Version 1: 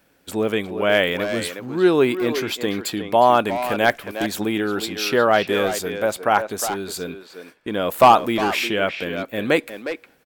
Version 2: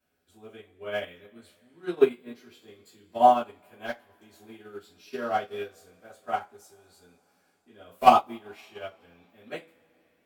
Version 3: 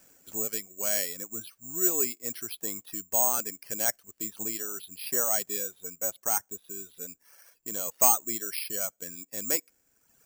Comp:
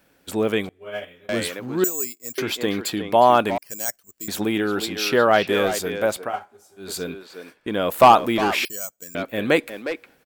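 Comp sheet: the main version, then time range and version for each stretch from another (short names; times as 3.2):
1
0.69–1.29 from 2
1.84–2.38 from 3
3.58–4.28 from 3
6.26–6.84 from 2, crossfade 0.16 s
8.65–9.15 from 3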